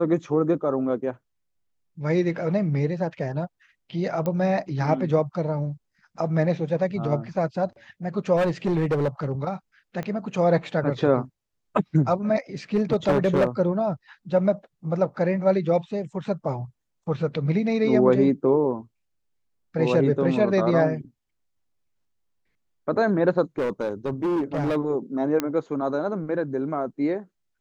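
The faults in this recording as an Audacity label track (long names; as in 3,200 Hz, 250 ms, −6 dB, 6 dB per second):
4.260000	4.260000	click −16 dBFS
8.360000	9.320000	clipping −18.5 dBFS
10.030000	10.030000	click −19 dBFS
12.750000	13.470000	clipping −15 dBFS
23.580000	24.770000	clipping −21 dBFS
25.400000	25.400000	click −10 dBFS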